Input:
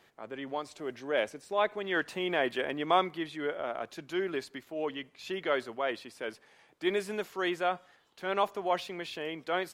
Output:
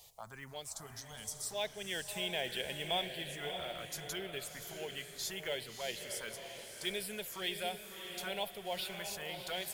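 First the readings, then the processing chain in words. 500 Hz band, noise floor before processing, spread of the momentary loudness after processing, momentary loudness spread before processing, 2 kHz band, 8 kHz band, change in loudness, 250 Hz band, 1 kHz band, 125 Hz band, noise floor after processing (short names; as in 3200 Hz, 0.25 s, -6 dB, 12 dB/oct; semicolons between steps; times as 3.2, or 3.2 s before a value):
-10.0 dB, -64 dBFS, 9 LU, 10 LU, -7.0 dB, +11.0 dB, -6.5 dB, -12.0 dB, -12.0 dB, -1.5 dB, -52 dBFS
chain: spectral gain 0.87–1.44, 240–2800 Hz -16 dB; in parallel at +3 dB: compressor, threshold -41 dBFS, peak gain reduction 20 dB; on the sum: envelope phaser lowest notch 250 Hz, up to 1200 Hz, full sweep at -26 dBFS; passive tone stack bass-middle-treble 10-0-10; short-mantissa float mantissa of 4-bit; bell 1900 Hz -15 dB 2.3 oct; on a send: diffused feedback echo 0.636 s, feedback 42%, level -6.5 dB; on the sum: gain +12 dB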